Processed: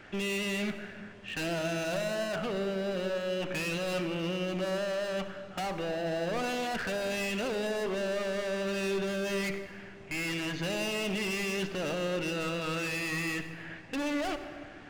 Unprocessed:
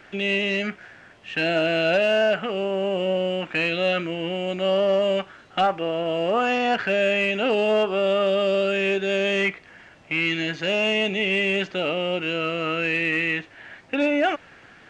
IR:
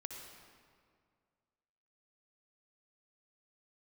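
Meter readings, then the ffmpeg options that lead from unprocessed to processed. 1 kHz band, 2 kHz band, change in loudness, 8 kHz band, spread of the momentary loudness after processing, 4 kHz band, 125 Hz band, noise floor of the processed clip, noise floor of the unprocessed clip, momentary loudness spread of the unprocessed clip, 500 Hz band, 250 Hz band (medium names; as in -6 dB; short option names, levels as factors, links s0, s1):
-11.0 dB, -10.5 dB, -10.0 dB, no reading, 6 LU, -9.5 dB, -4.5 dB, -48 dBFS, -50 dBFS, 6 LU, -10.5 dB, -7.0 dB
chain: -filter_complex "[0:a]asoftclip=type=hard:threshold=0.0335,asplit=2[s0][s1];[1:a]atrim=start_sample=2205,lowshelf=f=390:g=11.5[s2];[s1][s2]afir=irnorm=-1:irlink=0,volume=0.891[s3];[s0][s3]amix=inputs=2:normalize=0,volume=0.447"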